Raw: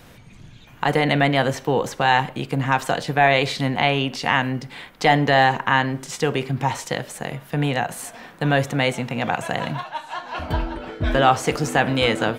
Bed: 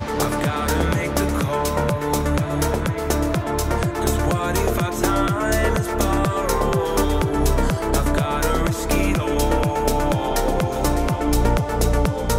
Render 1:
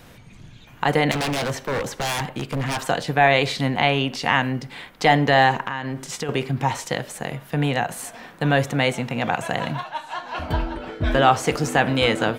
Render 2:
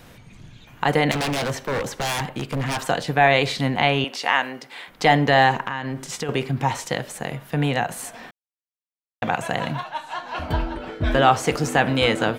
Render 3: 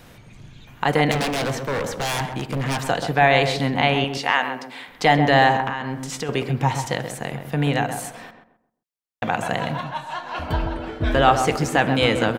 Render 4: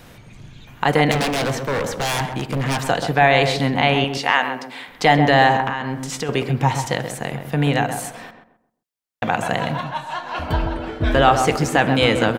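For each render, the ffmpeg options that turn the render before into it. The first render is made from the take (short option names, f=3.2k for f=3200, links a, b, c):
-filter_complex "[0:a]asettb=1/sr,asplit=3[a][b][c];[a]atrim=end=1.114[d];[b]atrim=start=1.11:end=2.79,asetpts=PTS-STARTPTS,afade=t=in:d=0.004:c=qsin,afade=t=out:st=1.676:d=0.004:c=qsin,aeval=exprs='0.112*(abs(mod(val(0)/0.112+3,4)-2)-1)':c=same[e];[c]atrim=start=2.786[f];[d][e]acrossfade=d=0.004:c1=hsin:c2=qsin[g];[g][f]acrossfade=d=0.004:c1=qsin:c2=hsin,asettb=1/sr,asplit=3[h][i][j];[h]atrim=end=5.634[k];[i]atrim=start=5.63:end=6.29,asetpts=PTS-STARTPTS,afade=t=in:d=0.004:c=qsin,afade=t=out:st=0.656:d=0.004:c=qsin,acompressor=threshold=-23dB:ratio=6:attack=3.2:release=140:knee=1:detection=peak[l];[j]atrim=start=6.286[m];[k][l]acrossfade=d=0.004:c1=hsin:c2=qsin[n];[n][m]acrossfade=d=0.004:c1=qsin:c2=hsin"
-filter_complex "[0:a]asettb=1/sr,asplit=3[a][b][c];[a]atrim=end=4.044[d];[b]atrim=start=4.04:end=4.88,asetpts=PTS-STARTPTS,afade=t=in:d=0.004:c=qsin,afade=t=out:st=0.836:d=0.004:c=qsin,highpass=440[e];[c]atrim=start=4.876[f];[d][e]acrossfade=d=0.004:c1=hsin:c2=qsin[g];[g][f]acrossfade=d=0.004:c1=qsin:c2=hsin,asplit=3[h][i][j];[h]atrim=end=8.31,asetpts=PTS-STARTPTS,afade=t=out:st=8.306:d=0.004:c=hsin[k];[i]atrim=start=8.31:end=9.22,asetpts=PTS-STARTPTS,volume=0[l];[j]atrim=start=9.22,asetpts=PTS-STARTPTS,afade=t=in:d=0.004:c=hsin[m];[k][l][m]concat=n=3:v=0:a=1"
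-filter_complex "[0:a]asplit=2[a][b];[b]adelay=131,lowpass=f=1.2k:p=1,volume=-6dB,asplit=2[c][d];[d]adelay=131,lowpass=f=1.2k:p=1,volume=0.34,asplit=2[e][f];[f]adelay=131,lowpass=f=1.2k:p=1,volume=0.34,asplit=2[g][h];[h]adelay=131,lowpass=f=1.2k:p=1,volume=0.34[i];[a][c][e][g][i]amix=inputs=5:normalize=0"
-af "volume=2.5dB,alimiter=limit=-2dB:level=0:latency=1"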